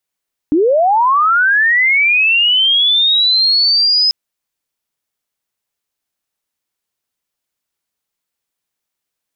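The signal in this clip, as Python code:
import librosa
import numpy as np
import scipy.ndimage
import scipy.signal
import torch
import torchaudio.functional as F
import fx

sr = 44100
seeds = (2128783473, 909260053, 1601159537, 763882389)

y = fx.chirp(sr, length_s=3.59, from_hz=280.0, to_hz=5100.0, law='linear', from_db=-8.5, to_db=-9.0)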